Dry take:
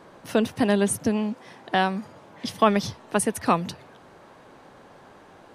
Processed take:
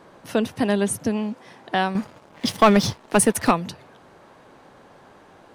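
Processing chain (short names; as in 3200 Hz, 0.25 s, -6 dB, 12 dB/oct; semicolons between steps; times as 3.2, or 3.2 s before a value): 1.95–3.51 sample leveller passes 2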